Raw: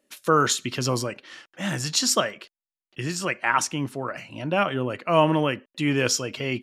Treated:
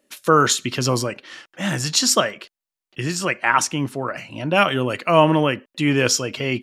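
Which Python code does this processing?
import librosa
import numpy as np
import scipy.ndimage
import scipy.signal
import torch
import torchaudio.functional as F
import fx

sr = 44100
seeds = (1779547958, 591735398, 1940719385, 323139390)

y = fx.high_shelf(x, sr, hz=2800.0, db=10.5, at=(4.54, 5.1), fade=0.02)
y = F.gain(torch.from_numpy(y), 4.5).numpy()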